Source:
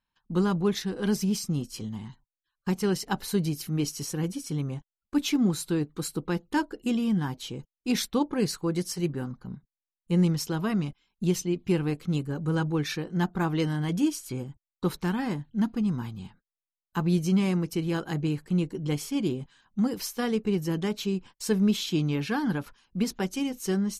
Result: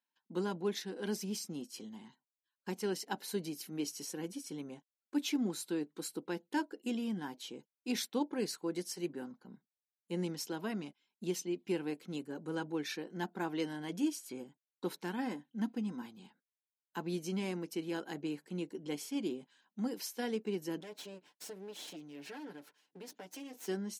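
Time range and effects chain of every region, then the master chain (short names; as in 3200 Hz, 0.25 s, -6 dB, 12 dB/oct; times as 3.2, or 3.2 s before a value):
15.17–16.06 notch 4300 Hz, Q 13 + comb 3.9 ms, depth 37%
20.8–23.68 minimum comb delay 6.7 ms + compressor, threshold -35 dBFS
whole clip: HPF 230 Hz 24 dB/oct; notch 1200 Hz, Q 5.5; gain -7.5 dB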